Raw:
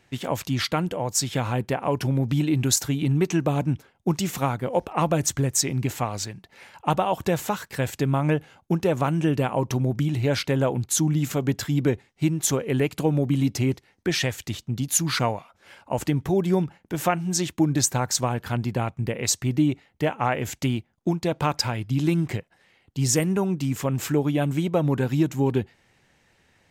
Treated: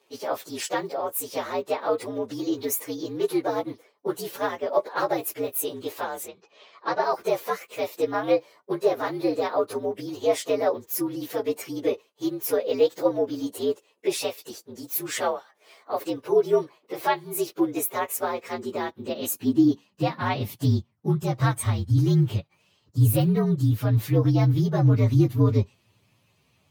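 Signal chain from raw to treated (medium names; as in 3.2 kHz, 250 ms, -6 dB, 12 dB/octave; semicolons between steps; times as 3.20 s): frequency axis rescaled in octaves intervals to 118%; high-pass sweep 450 Hz -> 110 Hz, 18.40–20.84 s; 6.28–7.03 s: low-pass 5.4 kHz 24 dB/octave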